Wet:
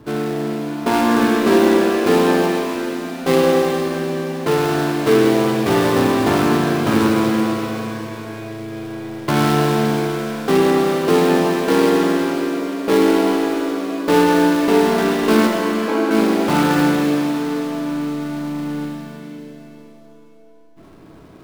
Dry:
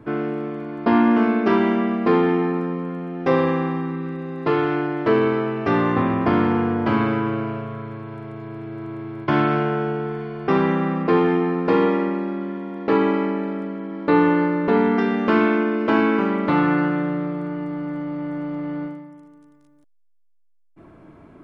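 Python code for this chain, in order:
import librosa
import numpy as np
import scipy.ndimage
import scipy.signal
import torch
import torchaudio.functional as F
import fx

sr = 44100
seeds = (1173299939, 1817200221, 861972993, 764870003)

y = fx.dead_time(x, sr, dead_ms=0.19)
y = fx.bandpass_q(y, sr, hz=630.0, q=1.2, at=(15.47, 16.11))
y = fx.rev_shimmer(y, sr, seeds[0], rt60_s=3.0, semitones=7, shimmer_db=-8, drr_db=1.0)
y = y * 10.0 ** (1.0 / 20.0)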